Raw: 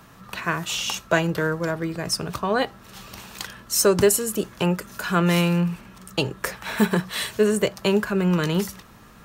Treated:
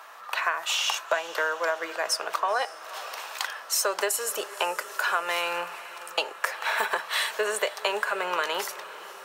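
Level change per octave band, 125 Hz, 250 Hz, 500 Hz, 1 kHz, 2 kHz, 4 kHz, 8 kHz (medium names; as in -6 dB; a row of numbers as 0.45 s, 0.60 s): under -35 dB, -24.0 dB, -7.5 dB, +1.5 dB, +1.0 dB, -0.5 dB, -3.5 dB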